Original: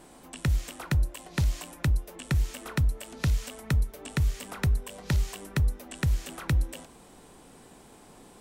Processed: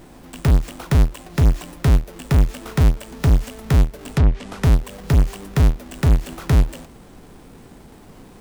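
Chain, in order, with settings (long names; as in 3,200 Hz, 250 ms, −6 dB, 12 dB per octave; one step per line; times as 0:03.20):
each half-wave held at its own peak
low-shelf EQ 210 Hz +8.5 dB
0:04.13–0:04.64: treble cut that deepens with the level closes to 2,200 Hz, closed at −10 dBFS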